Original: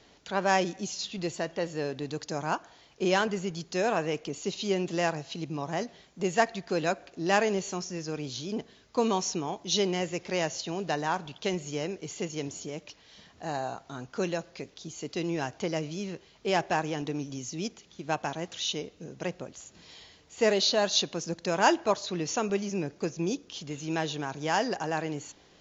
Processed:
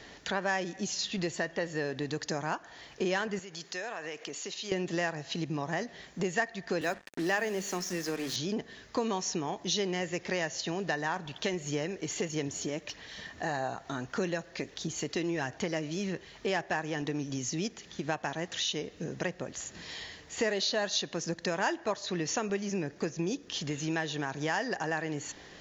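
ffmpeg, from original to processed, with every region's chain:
-filter_complex "[0:a]asettb=1/sr,asplit=3[s0][s1][s2];[s0]atrim=end=3.394[s3];[s1]atrim=start=3.39:end=4.72,asetpts=PTS-STARTPTS,afade=t=in:d=0.004:c=qsin,afade=t=out:st=1.326:d=0.004:c=qsin,highpass=f=740:p=1,acompressor=threshold=0.00631:ratio=4:attack=3.2:release=140:knee=1:detection=peak[s4];[s2]atrim=start=4.716[s5];[s3][s4]acrossfade=d=0.004:c1=hsin:c2=qsin[s6];[s6][s5]acrossfade=d=0.004:c1=qsin:c2=hsin,asettb=1/sr,asplit=3[s7][s8][s9];[s7]atrim=end=6.814[s10];[s8]atrim=start=6.81:end=8.36,asetpts=PTS-STARTPTS,afade=t=in:d=0.004:c=qsin,afade=t=out:st=1.546:d=0.004:c=qsin,highpass=f=170:w=0.5412,highpass=f=170:w=1.3066,bandreject=f=50:t=h:w=6,bandreject=f=100:t=h:w=6,bandreject=f=150:t=h:w=6,bandreject=f=200:t=h:w=6,bandreject=f=250:t=h:w=6,acrusher=bits=6:mix=0:aa=0.5[s11];[s9]atrim=start=8.356[s12];[s10][s11]acrossfade=d=0.004:c1=hsin:c2=qsin[s13];[s13][s12]acrossfade=d=0.004:c1=qsin:c2=hsin,asettb=1/sr,asplit=3[s14][s15][s16];[s14]atrim=end=11.164[s17];[s15]atrim=start=11.16:end=16.5,asetpts=PTS-STARTPTS,afade=t=in:d=0.004:c=qsin,afade=t=out:st=5.336:d=0.004:c=qsin,bandreject=f=4900:w=26,aphaser=in_gain=1:out_gain=1:delay=3.4:decay=0.24:speed=1.6:type=sinusoidal[s18];[s16]atrim=start=16.496[s19];[s17][s18]acrossfade=d=0.004:c1=hsin:c2=qsin[s20];[s20][s19]acrossfade=d=0.004:c1=qsin:c2=hsin,equalizer=f=1800:w=5.9:g=10.5,acompressor=threshold=0.0112:ratio=3,volume=2.24"

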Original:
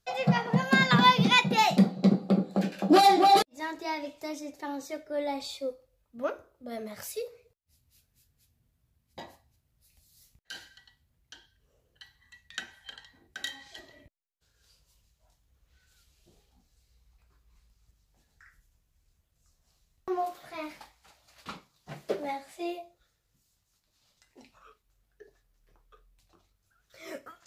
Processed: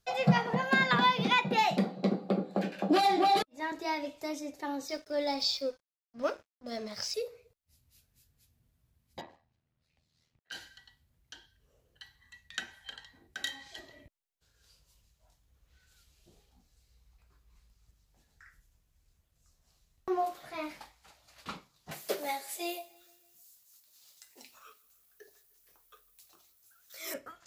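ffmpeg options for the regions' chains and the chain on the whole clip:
-filter_complex "[0:a]asettb=1/sr,asplit=3[s0][s1][s2];[s0]atrim=end=0.534[s3];[s1]atrim=start=0.53:end=3.72,asetpts=PTS-STARTPTS,afade=t=in:d=0.004:c=qsin,afade=t=out:st=3.186:d=0.004:c=qsin,acrossover=split=230|2000[s4][s5][s6];[s4]acompressor=threshold=0.0178:ratio=4[s7];[s5]acompressor=threshold=0.0631:ratio=4[s8];[s6]acompressor=threshold=0.0398:ratio=4[s9];[s7][s8][s9]amix=inputs=3:normalize=0,bass=f=250:g=-3,treble=f=4000:g=-8,bandreject=f=1300:w=25[s10];[s2]atrim=start=3.716[s11];[s3][s10]acrossfade=d=0.004:c1=hsin:c2=qsin[s12];[s12][s11]acrossfade=d=0.004:c1=qsin:c2=hsin,asettb=1/sr,asplit=3[s13][s14][s15];[s13]atrim=end=4.884[s16];[s14]atrim=start=4.88:end=7.14,asetpts=PTS-STARTPTS,afade=t=in:d=0.004:c=qsin,afade=t=out:st=2.256:d=0.004:c=qsin,lowpass=f=5200:t=q:w=7.6,aeval=exprs='sgn(val(0))*max(abs(val(0))-0.00211,0)':c=same[s17];[s15]atrim=start=7.136[s18];[s16][s17]acrossfade=d=0.004:c1=hsin:c2=qsin[s19];[s19][s18]acrossfade=d=0.004:c1=qsin:c2=hsin,asettb=1/sr,asplit=3[s20][s21][s22];[s20]atrim=end=9.214[s23];[s21]atrim=start=9.21:end=10.52,asetpts=PTS-STARTPTS,afade=t=in:d=0.004:c=qsin,afade=t=out:st=1.306:d=0.004:c=qsin,highpass=110,lowpass=3000,tremolo=f=80:d=0.667[s24];[s22]atrim=start=10.516[s25];[s23][s24]acrossfade=d=0.004:c1=hsin:c2=qsin[s26];[s26][s25]acrossfade=d=0.004:c1=qsin:c2=hsin,asettb=1/sr,asplit=3[s27][s28][s29];[s27]atrim=end=21.914[s30];[s28]atrim=start=21.91:end=27.14,asetpts=PTS-STARTPTS,afade=t=in:d=0.004:c=qsin,afade=t=out:st=5.226:d=0.004:c=qsin,aemphasis=mode=production:type=riaa,aecho=1:1:152|304|456|608:0.0668|0.0361|0.0195|0.0105,atrim=end_sample=230643[s31];[s29]atrim=start=27.136[s32];[s30][s31]acrossfade=d=0.004:c1=hsin:c2=qsin[s33];[s33][s32]acrossfade=d=0.004:c1=qsin:c2=hsin"

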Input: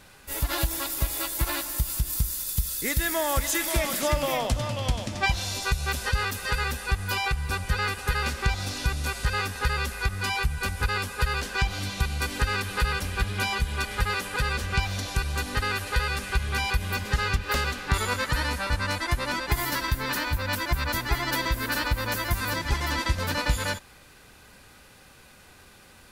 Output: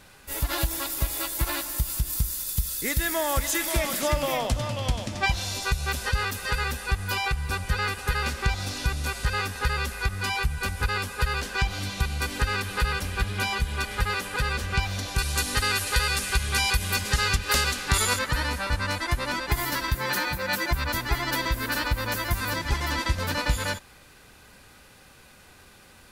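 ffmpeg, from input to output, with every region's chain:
-filter_complex "[0:a]asettb=1/sr,asplit=3[s0][s1][s2];[s0]atrim=end=15.184[s3];[s1]atrim=start=15.18:end=18.19,asetpts=PTS-STARTPTS,afade=t=in:d=0.004:c=qsin,afade=t=out:st=3.006:d=0.004:c=qsin,lowpass=9900,aemphasis=mode=production:type=75kf[s4];[s2]atrim=start=18.186[s5];[s3][s4]acrossfade=d=0.004:c1=hsin:c2=qsin[s6];[s6][s5]acrossfade=d=0.004:c1=qsin:c2=hsin,asettb=1/sr,asplit=3[s7][s8][s9];[s7]atrim=end=19.954[s10];[s8]atrim=start=19.95:end=20.71,asetpts=PTS-STARTPTS,afade=t=in:d=0.004:c=qsin,afade=t=out:st=0.756:d=0.004:c=qsin,highpass=82,aecho=1:1:5.6:0.72,atrim=end_sample=33516[s11];[s9]atrim=start=20.706[s12];[s10][s11]acrossfade=d=0.004:c1=hsin:c2=qsin[s13];[s13][s12]acrossfade=d=0.004:c1=qsin:c2=hsin"

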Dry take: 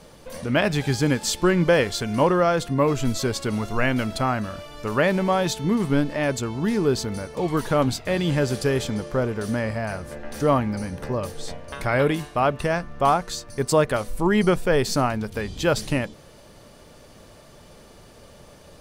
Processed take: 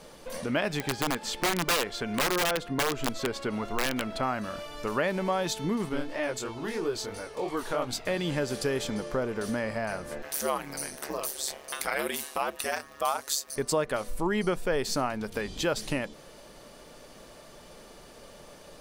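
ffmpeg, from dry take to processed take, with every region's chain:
-filter_complex "[0:a]asettb=1/sr,asplit=3[s0][s1][s2];[s0]atrim=end=0.794[s3];[s1]atrim=start=0.79:end=4.23,asetpts=PTS-STARTPTS,afade=t=in:d=0.004:c=qsin,afade=t=out:st=3.436:d=0.004:c=qsin,bass=f=250:g=-2,treble=f=4000:g=-11,aeval=exprs='(mod(4.73*val(0)+1,2)-1)/4.73':c=same[s4];[s2]atrim=start=4.226[s5];[s3][s4]acrossfade=d=0.004:c1=hsin:c2=qsin[s6];[s6][s5]acrossfade=d=0.004:c1=qsin:c2=hsin,asettb=1/sr,asplit=3[s7][s8][s9];[s7]atrim=end=5.894[s10];[s8]atrim=start=5.89:end=7.93,asetpts=PTS-STARTPTS,afade=t=in:d=0.004:c=qsin,afade=t=out:st=2.036:d=0.004:c=qsin,equalizer=f=190:t=o:w=0.81:g=-10,flanger=delay=16.5:depth=6.7:speed=3[s11];[s9]atrim=start=7.926[s12];[s10][s11]acrossfade=d=0.004:c1=hsin:c2=qsin[s13];[s13][s12]acrossfade=d=0.004:c1=qsin:c2=hsin,asettb=1/sr,asplit=3[s14][s15][s16];[s14]atrim=end=10.224[s17];[s15]atrim=start=10.22:end=13.56,asetpts=PTS-STARTPTS,afade=t=in:d=0.004:c=qsin,afade=t=out:st=3.336:d=0.004:c=qsin,aemphasis=mode=production:type=riaa,aeval=exprs='val(0)*sin(2*PI*71*n/s)':c=same[s18];[s16]atrim=start=13.556[s19];[s17][s18]acrossfade=d=0.004:c1=hsin:c2=qsin[s20];[s20][s19]acrossfade=d=0.004:c1=qsin:c2=hsin,equalizer=f=86:t=o:w=1.7:g=-11.5,acompressor=threshold=0.0355:ratio=2"

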